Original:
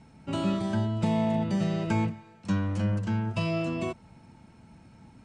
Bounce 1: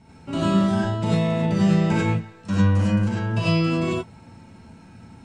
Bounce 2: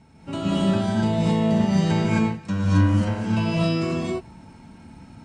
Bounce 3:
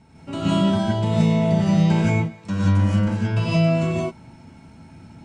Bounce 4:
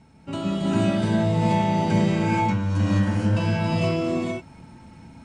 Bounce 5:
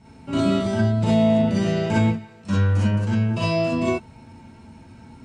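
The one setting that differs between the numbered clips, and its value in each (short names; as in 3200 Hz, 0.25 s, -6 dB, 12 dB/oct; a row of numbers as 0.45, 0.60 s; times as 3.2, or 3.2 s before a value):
non-linear reverb, gate: 120, 290, 200, 500, 80 ms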